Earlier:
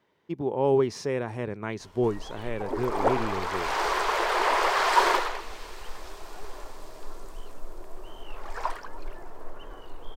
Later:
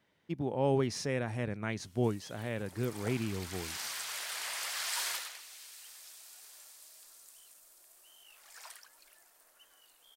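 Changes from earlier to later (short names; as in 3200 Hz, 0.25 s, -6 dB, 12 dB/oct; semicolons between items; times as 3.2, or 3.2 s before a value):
background: add differentiator; master: add fifteen-band EQ 400 Hz -9 dB, 1000 Hz -8 dB, 10000 Hz +5 dB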